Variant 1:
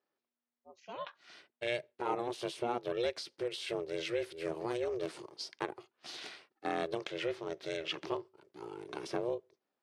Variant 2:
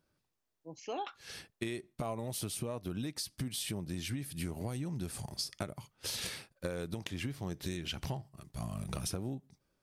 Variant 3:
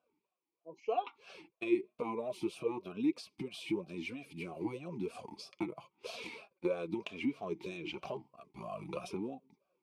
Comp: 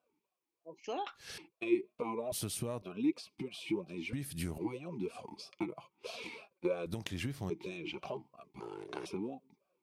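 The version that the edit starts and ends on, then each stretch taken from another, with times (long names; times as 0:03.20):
3
0:00.84–0:01.38: punch in from 2
0:02.32–0:02.82: punch in from 2
0:04.13–0:04.58: punch in from 2
0:06.86–0:07.50: punch in from 2
0:08.60–0:09.06: punch in from 1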